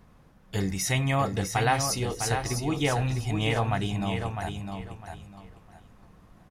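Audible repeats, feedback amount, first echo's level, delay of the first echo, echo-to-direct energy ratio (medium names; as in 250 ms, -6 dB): 3, 24%, -6.5 dB, 654 ms, -6.0 dB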